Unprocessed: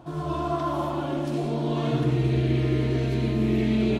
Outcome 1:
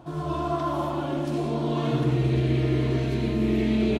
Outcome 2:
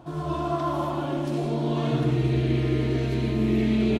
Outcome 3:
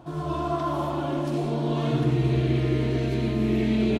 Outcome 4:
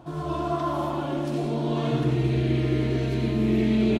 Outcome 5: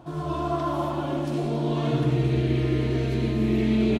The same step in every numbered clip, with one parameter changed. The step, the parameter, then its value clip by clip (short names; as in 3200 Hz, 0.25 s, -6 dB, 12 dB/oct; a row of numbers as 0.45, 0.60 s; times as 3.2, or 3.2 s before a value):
feedback echo, time: 1102, 156, 540, 87, 274 ms